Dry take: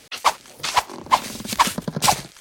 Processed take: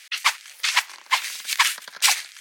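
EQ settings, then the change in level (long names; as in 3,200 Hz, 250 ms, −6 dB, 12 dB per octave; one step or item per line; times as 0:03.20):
high-pass with resonance 1,900 Hz, resonance Q 1.8
+1.0 dB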